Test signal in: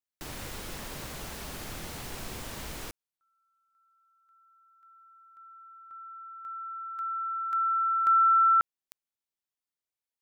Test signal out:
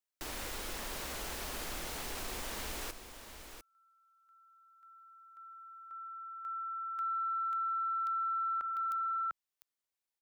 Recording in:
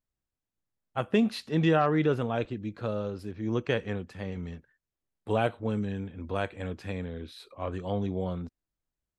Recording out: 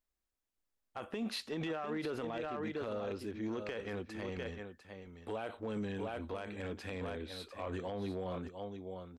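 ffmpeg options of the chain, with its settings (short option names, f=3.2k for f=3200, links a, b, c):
-af "equalizer=f=130:w=1.3:g=-14.5,aecho=1:1:699:0.316,acompressor=threshold=-32dB:ratio=16:attack=0.24:release=63:knee=1:detection=peak"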